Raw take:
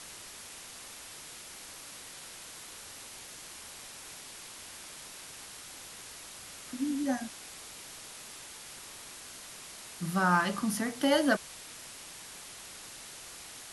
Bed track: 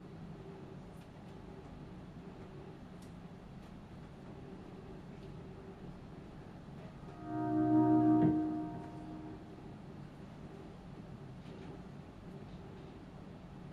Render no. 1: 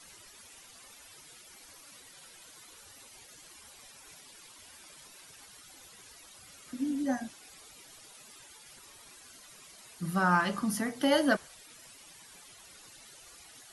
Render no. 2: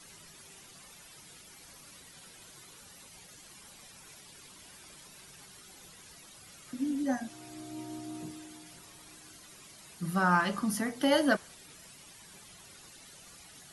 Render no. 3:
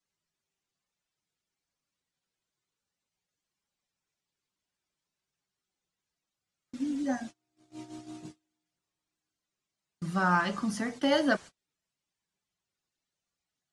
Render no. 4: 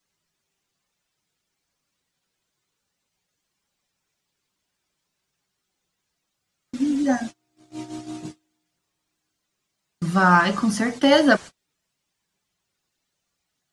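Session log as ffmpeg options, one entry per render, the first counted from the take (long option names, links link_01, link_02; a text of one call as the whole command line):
ffmpeg -i in.wav -af "afftdn=noise_reduction=13:noise_floor=-48" out.wav
ffmpeg -i in.wav -i bed.wav -filter_complex "[1:a]volume=-14dB[link_01];[0:a][link_01]amix=inputs=2:normalize=0" out.wav
ffmpeg -i in.wav -af "lowpass=frequency=8100:width=0.5412,lowpass=frequency=8100:width=1.3066,agate=range=-35dB:threshold=-41dB:ratio=16:detection=peak" out.wav
ffmpeg -i in.wav -af "volume=10dB" out.wav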